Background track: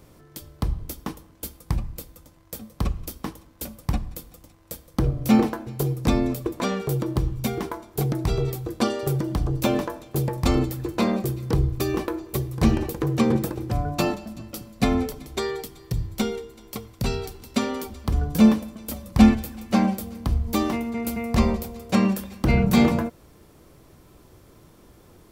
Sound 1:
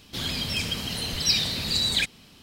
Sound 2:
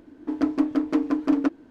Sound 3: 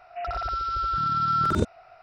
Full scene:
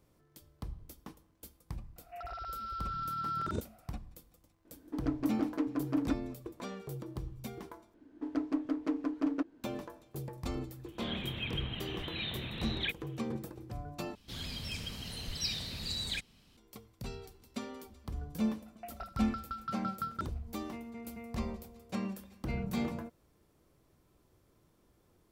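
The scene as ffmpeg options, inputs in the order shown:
-filter_complex "[3:a]asplit=2[a][b];[2:a]asplit=2[c][d];[1:a]asplit=2[e][f];[0:a]volume=-17dB[g];[e]aresample=8000,aresample=44100[h];[f]lowshelf=f=81:g=11[i];[b]aeval=exprs='val(0)*pow(10,-29*if(lt(mod(5.9*n/s,1),2*abs(5.9)/1000),1-mod(5.9*n/s,1)/(2*abs(5.9)/1000),(mod(5.9*n/s,1)-2*abs(5.9)/1000)/(1-2*abs(5.9)/1000))/20)':c=same[j];[g]asplit=3[k][l][m];[k]atrim=end=7.944[n];[d]atrim=end=1.7,asetpts=PTS-STARTPTS,volume=-10.5dB[o];[l]atrim=start=9.636:end=14.154[p];[i]atrim=end=2.42,asetpts=PTS-STARTPTS,volume=-13dB[q];[m]atrim=start=16.566[r];[a]atrim=end=2.02,asetpts=PTS-STARTPTS,volume=-12.5dB,afade=t=in:d=0.004:c=hsin,afade=t=out:st=2.016:d=0.004:c=hsin,adelay=1960[s];[c]atrim=end=1.7,asetpts=PTS-STARTPTS,volume=-10.5dB,afade=t=in:d=0.004:c=hsin,afade=t=out:st=1.696:d=0.004:c=hsin,adelay=205065S[t];[h]atrim=end=2.42,asetpts=PTS-STARTPTS,volume=-9dB,afade=t=in:d=0.004:c=hsin,afade=t=out:st=2.416:d=0.004:c=hsin,adelay=10860[u];[j]atrim=end=2.02,asetpts=PTS-STARTPTS,volume=-8dB,afade=t=in:d=0.004:c=hsin,afade=t=out:st=2.016:d=0.004:c=hsin,adelay=18660[v];[n][o]acrossfade=d=0.004:c1=hsin:c2=hsin[w];[w][p]acrossfade=d=0.004:c1=hsin:c2=hsin[x];[x][q]acrossfade=d=0.004:c1=hsin:c2=hsin[y];[y][r]acrossfade=d=0.004:c1=hsin:c2=hsin[z];[z][s][t][u][v]amix=inputs=5:normalize=0"

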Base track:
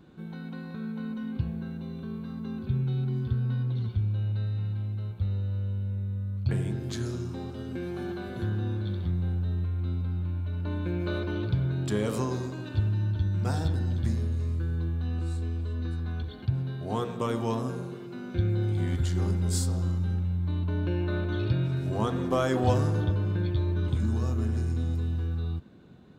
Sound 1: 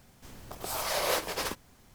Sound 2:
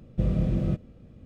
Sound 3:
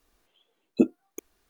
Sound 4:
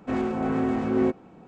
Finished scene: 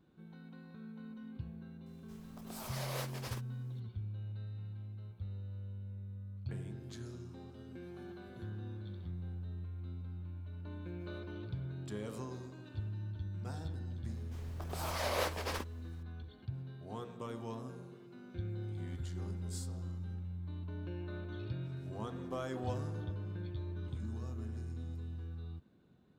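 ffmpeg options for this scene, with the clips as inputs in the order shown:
-filter_complex "[1:a]asplit=2[a][b];[0:a]volume=-14dB[c];[b]highshelf=f=5.2k:g=-8.5[d];[a]atrim=end=1.94,asetpts=PTS-STARTPTS,volume=-13dB,afade=t=in:d=0.004:c=hsin,afade=t=out:st=1.936:d=0.004:c=hsin,adelay=1860[e];[d]atrim=end=1.94,asetpts=PTS-STARTPTS,volume=-4.5dB,afade=t=in:d=0.004:c=hsin,afade=t=out:st=1.936:d=0.004:c=hsin,adelay=14090[f];[c][e][f]amix=inputs=3:normalize=0"

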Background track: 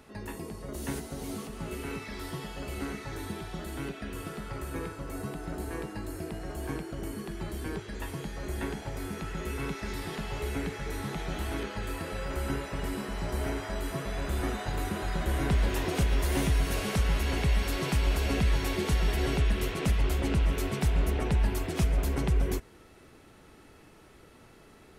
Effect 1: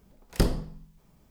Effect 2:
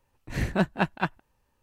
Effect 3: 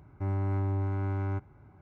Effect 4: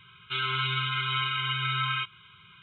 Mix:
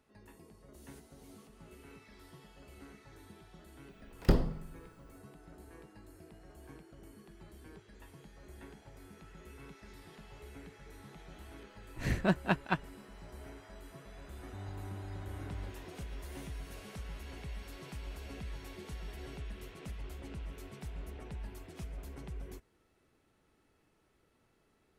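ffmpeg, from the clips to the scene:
-filter_complex "[0:a]volume=-17.5dB[a];[1:a]equalizer=f=9.4k:t=o:w=1.9:g=-14[b];[2:a]bandreject=f=840:w=12[c];[b]atrim=end=1.3,asetpts=PTS-STARTPTS,volume=-2dB,afade=t=in:d=0.004:c=hsin,afade=t=out:st=1.296:d=0.004:c=hsin,adelay=171549S[d];[c]atrim=end=1.62,asetpts=PTS-STARTPTS,volume=-4.5dB,afade=t=in:d=0.004:c=hsin,afade=t=out:st=1.616:d=0.004:c=hsin,adelay=11690[e];[3:a]atrim=end=1.81,asetpts=PTS-STARTPTS,volume=-14.5dB,afade=t=in:d=0.004:c=hsin,afade=t=out:st=1.806:d=0.004:c=hsin,adelay=14320[f];[a][d][e][f]amix=inputs=4:normalize=0"

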